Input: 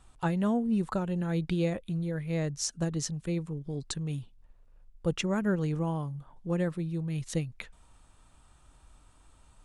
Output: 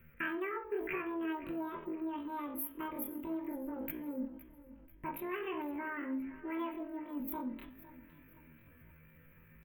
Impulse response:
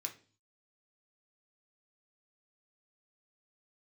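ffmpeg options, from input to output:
-filter_complex "[0:a]acrossover=split=420[s0][s1];[s0]alimiter=level_in=2:limit=0.0631:level=0:latency=1:release=38,volume=0.501[s2];[s2][s1]amix=inputs=2:normalize=0,equalizer=f=2900:w=6.9:g=-3,acompressor=threshold=0.02:ratio=3,asuperstop=centerf=3200:order=8:qfactor=0.52,equalizer=f=390:w=2.8:g=-10.5,aecho=1:1:507|1014|1521|2028:0.141|0.0622|0.0273|0.012[s3];[1:a]atrim=start_sample=2205,asetrate=35280,aresample=44100[s4];[s3][s4]afir=irnorm=-1:irlink=0,asetrate=83250,aresample=44100,atempo=0.529732,volume=1.58"

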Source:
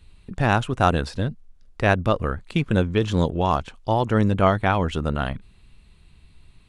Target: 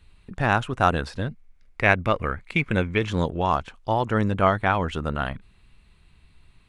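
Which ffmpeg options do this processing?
-filter_complex "[0:a]asettb=1/sr,asplit=3[s0][s1][s2];[s0]atrim=end=1.284[s3];[s1]atrim=start=1.28:end=3.09,asetpts=PTS-STARTPTS,afade=t=in:d=0.004:c=qsin,afade=t=out:st=1.806:d=0.004:c=qsin,equalizer=f=2200:w=4.4:g=12.5[s4];[s2]atrim=start=3.086[s5];[s3][s4]acrossfade=d=0.004:c1=hsin:c2=qsin[s6];[s6][s5]acrossfade=d=0.004:c1=qsin:c2=hsin,acrossover=split=2000[s7][s8];[s7]crystalizer=i=8.5:c=0[s9];[s9][s8]amix=inputs=2:normalize=0,volume=0.631"

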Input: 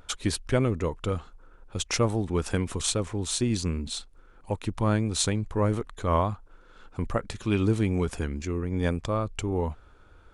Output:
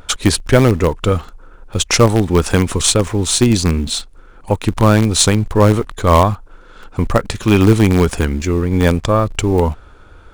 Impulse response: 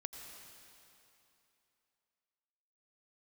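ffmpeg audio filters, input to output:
-filter_complex "[0:a]asplit=2[s0][s1];[s1]acrusher=bits=4:dc=4:mix=0:aa=0.000001,volume=0.282[s2];[s0][s2]amix=inputs=2:normalize=0,apsyclip=5.01,volume=0.841"

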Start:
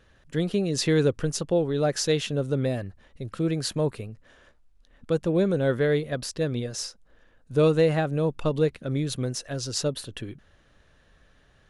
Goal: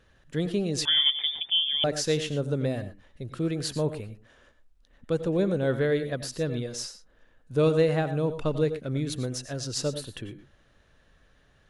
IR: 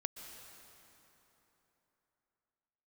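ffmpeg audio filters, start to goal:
-filter_complex "[1:a]atrim=start_sample=2205,afade=t=out:st=0.22:d=0.01,atrim=end_sample=10143,asetrate=61740,aresample=44100[s0];[0:a][s0]afir=irnorm=-1:irlink=0,asettb=1/sr,asplit=3[s1][s2][s3];[s1]atrim=end=0.854[s4];[s2]atrim=start=0.85:end=1.84,asetpts=PTS-STARTPTS,afade=t=in:d=0.004:c=qsin,afade=t=out:st=0.986:d=0.004:c=qsin,lowpass=f=3100:t=q:w=0.5098,lowpass=f=3100:t=q:w=0.6013,lowpass=f=3100:t=q:w=0.9,lowpass=f=3100:t=q:w=2.563,afreqshift=-3600[s5];[s3]atrim=start=1.836[s6];[s4][s5]acrossfade=d=0.004:c1=hsin:c2=qsin[s7];[s7][s6]acrossfade=d=0.004:c1=qsin:c2=hsin,volume=1.41"

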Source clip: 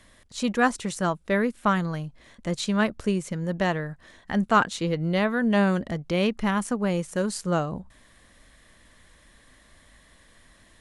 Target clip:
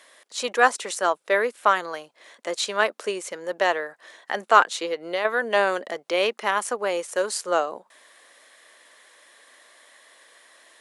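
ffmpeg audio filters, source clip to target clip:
-filter_complex "[0:a]highpass=f=420:w=0.5412,highpass=f=420:w=1.3066,asettb=1/sr,asplit=3[s0][s1][s2];[s0]atrim=end=4.624[s3];[s1]atrim=start=4.62:end=5.25,asetpts=PTS-STARTPTS,afade=t=in:d=0.004:c=qsin,afade=t=out:st=0.626:d=0.004:c=qsin,acompressor=threshold=0.0355:ratio=3[s4];[s2]atrim=start=5.246[s5];[s3][s4]acrossfade=d=0.004:c1=hsin:c2=qsin[s6];[s6][s5]acrossfade=d=0.004:c1=qsin:c2=hsin,volume=1.78"

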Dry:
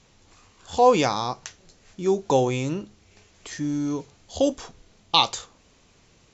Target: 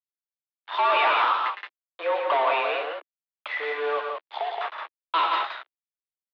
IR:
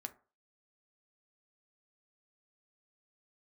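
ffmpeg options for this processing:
-filter_complex "[0:a]agate=range=0.0224:threshold=0.00447:ratio=3:detection=peak,acrossover=split=470 2800:gain=0.0794 1 0.224[s0][s1][s2];[s0][s1][s2]amix=inputs=3:normalize=0,bandreject=f=2900:w=15,asettb=1/sr,asplit=3[s3][s4][s5];[s3]atrim=end=0.744[s6];[s4]atrim=start=0.74:end=1.45,asetpts=PTS-STARTPTS,afade=t=in:d=0.004:c=qsin,afade=t=out:st=0.706:d=0.004:c=qsin,tiltshelf=f=740:g=-6[s7];[s5]atrim=start=1.446[s8];[s6][s7]acrossfade=d=0.004:c1=hsin:c2=qsin[s9];[s9][s8]acrossfade=d=0.004:c1=qsin:c2=hsin,asettb=1/sr,asplit=3[s10][s11][s12];[s10]atrim=end=3.984[s13];[s11]atrim=start=3.98:end=4.61,asetpts=PTS-STARTPTS,afade=t=in:d=0.004:c=qsin,afade=t=out:st=0.626:d=0.004:c=qsin,acompressor=threshold=0.01:ratio=5[s14];[s12]atrim=start=4.606[s15];[s13][s14]acrossfade=d=0.004:c1=hsin:c2=qsin[s16];[s16][s15]acrossfade=d=0.004:c1=qsin:c2=hsin,flanger=delay=9.9:depth=6.1:regen=57:speed=1:shape=triangular,acrusher=bits=7:mix=0:aa=0.5,asplit=2[s17][s18];[s18]highpass=f=720:p=1,volume=35.5,asoftclip=type=tanh:threshold=0.299[s19];[s17][s19]amix=inputs=2:normalize=0,lowpass=f=2500:p=1,volume=0.501,aecho=1:1:110.8|172:0.447|0.631,highpass=f=160:t=q:w=0.5412,highpass=f=160:t=q:w=1.307,lowpass=f=3600:t=q:w=0.5176,lowpass=f=3600:t=q:w=0.7071,lowpass=f=3600:t=q:w=1.932,afreqshift=150,volume=0.631"

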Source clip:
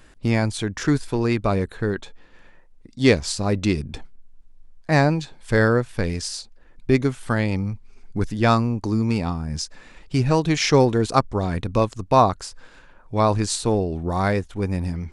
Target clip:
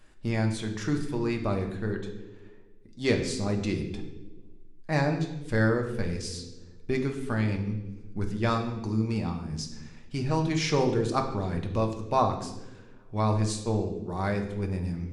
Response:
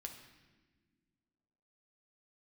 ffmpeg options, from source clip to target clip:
-filter_complex "[0:a]asplit=3[s0][s1][s2];[s0]afade=t=out:st=13.52:d=0.02[s3];[s1]agate=range=0.0224:threshold=0.1:ratio=3:detection=peak,afade=t=in:st=13.52:d=0.02,afade=t=out:st=14.31:d=0.02[s4];[s2]afade=t=in:st=14.31:d=0.02[s5];[s3][s4][s5]amix=inputs=3:normalize=0[s6];[1:a]atrim=start_sample=2205,asetrate=61740,aresample=44100[s7];[s6][s7]afir=irnorm=-1:irlink=0,volume=0.891"

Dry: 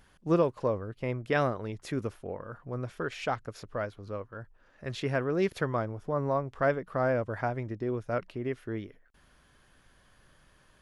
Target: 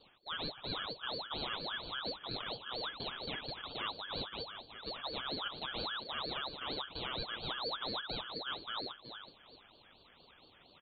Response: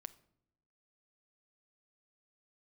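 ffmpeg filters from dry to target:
-filter_complex "[0:a]highpass=61,aecho=1:1:7:0.39,areverse,acompressor=threshold=0.0158:ratio=6,areverse,acrusher=samples=16:mix=1:aa=0.000001,flanger=delay=9.6:depth=1.5:regen=61:speed=0.53:shape=sinusoidal,asoftclip=type=tanh:threshold=0.0133,aecho=1:1:374|748|1122:0.376|0.0902|0.0216[s0];[1:a]atrim=start_sample=2205[s1];[s0][s1]afir=irnorm=-1:irlink=0,lowpass=f=2200:t=q:w=0.5098,lowpass=f=2200:t=q:w=0.6013,lowpass=f=2200:t=q:w=0.9,lowpass=f=2200:t=q:w=2.563,afreqshift=-2600,aeval=exprs='val(0)*sin(2*PI*1400*n/s+1400*0.45/4.3*sin(2*PI*4.3*n/s))':c=same,volume=4.47"

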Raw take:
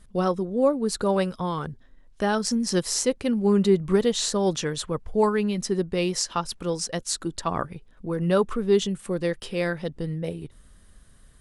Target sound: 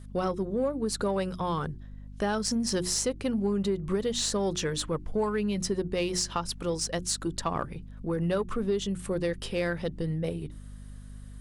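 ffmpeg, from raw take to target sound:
-filter_complex "[0:a]bandreject=f=60:t=h:w=6,bandreject=f=120:t=h:w=6,bandreject=f=180:t=h:w=6,bandreject=f=240:t=h:w=6,bandreject=f=300:t=h:w=6,bandreject=f=360:t=h:w=6,acompressor=threshold=0.0631:ratio=6,aeval=exprs='val(0)+0.00708*(sin(2*PI*50*n/s)+sin(2*PI*2*50*n/s)/2+sin(2*PI*3*50*n/s)/3+sin(2*PI*4*50*n/s)/4+sin(2*PI*5*50*n/s)/5)':c=same,asplit=2[s0][s1];[s1]asoftclip=type=tanh:threshold=0.0422,volume=0.422[s2];[s0][s2]amix=inputs=2:normalize=0,volume=0.75"

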